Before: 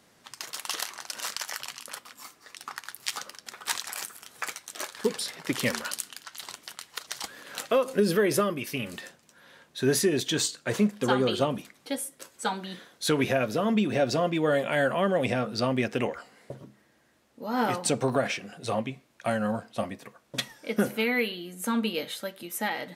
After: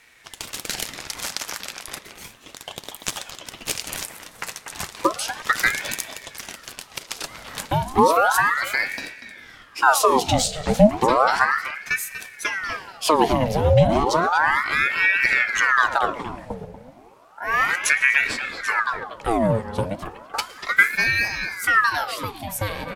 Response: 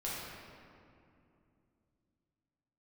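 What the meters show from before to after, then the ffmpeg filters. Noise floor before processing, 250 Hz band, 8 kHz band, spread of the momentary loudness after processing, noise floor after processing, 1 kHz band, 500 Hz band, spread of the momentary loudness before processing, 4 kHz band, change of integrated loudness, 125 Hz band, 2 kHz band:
-63 dBFS, +1.0 dB, +4.5 dB, 18 LU, -48 dBFS, +12.0 dB, +3.5 dB, 16 LU, +4.0 dB, +8.0 dB, +7.0 dB, +13.5 dB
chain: -filter_complex "[0:a]lowshelf=f=230:g=11,asplit=2[s0][s1];[s1]adelay=240,highpass=300,lowpass=3400,asoftclip=type=hard:threshold=0.133,volume=0.355[s2];[s0][s2]amix=inputs=2:normalize=0,acrossover=split=460|3000[s3][s4][s5];[s4]acompressor=threshold=0.0178:ratio=6[s6];[s3][s6][s5]amix=inputs=3:normalize=0,asplit=2[s7][s8];[1:a]atrim=start_sample=2205,adelay=111[s9];[s8][s9]afir=irnorm=-1:irlink=0,volume=0.0891[s10];[s7][s10]amix=inputs=2:normalize=0,aeval=exprs='val(0)*sin(2*PI*1200*n/s+1200*0.75/0.33*sin(2*PI*0.33*n/s))':c=same,volume=2.37"

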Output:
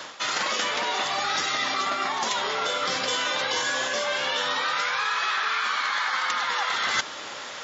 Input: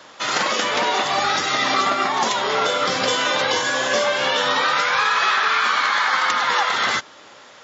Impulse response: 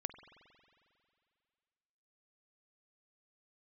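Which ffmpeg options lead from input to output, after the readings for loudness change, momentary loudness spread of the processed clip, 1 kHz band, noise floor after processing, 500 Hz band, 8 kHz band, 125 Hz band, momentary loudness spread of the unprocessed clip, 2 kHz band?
-6.0 dB, 2 LU, -7.5 dB, -37 dBFS, -9.0 dB, no reading, -9.5 dB, 3 LU, -6.0 dB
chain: -af "areverse,acompressor=threshold=0.0251:ratio=8,areverse,tiltshelf=f=970:g=-3,volume=2.24"

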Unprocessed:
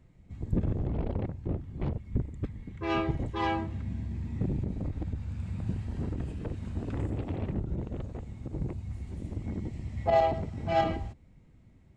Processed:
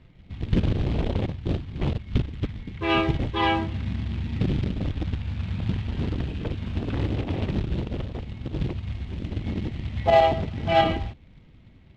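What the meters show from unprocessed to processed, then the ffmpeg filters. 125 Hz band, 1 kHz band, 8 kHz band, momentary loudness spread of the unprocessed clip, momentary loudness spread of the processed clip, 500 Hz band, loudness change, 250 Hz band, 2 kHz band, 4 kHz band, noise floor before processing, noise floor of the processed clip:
+6.0 dB, +6.5 dB, no reading, 11 LU, 11 LU, +6.5 dB, +6.5 dB, +6.0 dB, +9.5 dB, +13.5 dB, -58 dBFS, -52 dBFS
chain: -af "acrusher=bits=5:mode=log:mix=0:aa=0.000001,lowpass=f=3300:t=q:w=2.2,volume=2"

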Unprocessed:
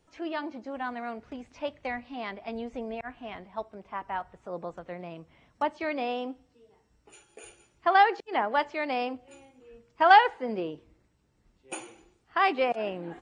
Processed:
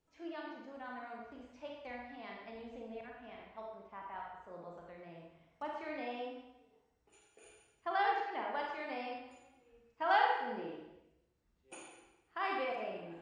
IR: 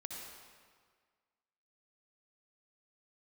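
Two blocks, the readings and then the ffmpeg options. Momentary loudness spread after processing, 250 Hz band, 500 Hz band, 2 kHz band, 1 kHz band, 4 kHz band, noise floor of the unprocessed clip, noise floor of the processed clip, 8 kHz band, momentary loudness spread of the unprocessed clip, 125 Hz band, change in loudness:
20 LU, -11.5 dB, -10.5 dB, -10.5 dB, -11.0 dB, -11.0 dB, -69 dBFS, -76 dBFS, no reading, 19 LU, -11.5 dB, -11.0 dB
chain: -filter_complex "[1:a]atrim=start_sample=2205,asetrate=79380,aresample=44100[s0];[0:a][s0]afir=irnorm=-1:irlink=0,volume=0.631"

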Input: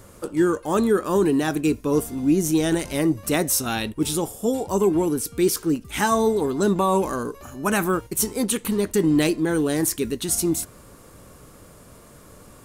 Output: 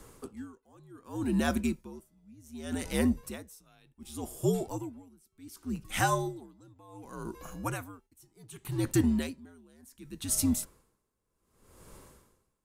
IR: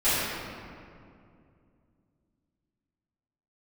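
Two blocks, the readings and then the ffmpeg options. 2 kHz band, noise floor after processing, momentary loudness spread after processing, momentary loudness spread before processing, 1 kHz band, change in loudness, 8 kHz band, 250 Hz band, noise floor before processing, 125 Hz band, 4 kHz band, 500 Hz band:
-10.0 dB, -79 dBFS, 21 LU, 5 LU, -11.5 dB, -10.0 dB, -11.5 dB, -11.5 dB, -48 dBFS, -7.0 dB, -12.0 dB, -16.0 dB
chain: -af "afreqshift=-79,aeval=exprs='val(0)*pow(10,-32*(0.5-0.5*cos(2*PI*0.67*n/s))/20)':c=same,volume=0.596"

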